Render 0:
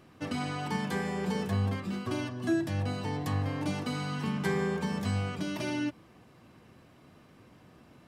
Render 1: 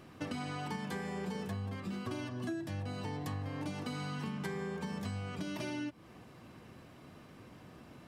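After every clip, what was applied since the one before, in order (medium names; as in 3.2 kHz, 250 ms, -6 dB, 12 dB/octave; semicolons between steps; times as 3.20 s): compression 6:1, threshold -39 dBFS, peak gain reduction 14.5 dB; trim +2.5 dB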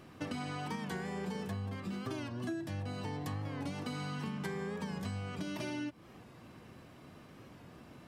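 warped record 45 rpm, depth 100 cents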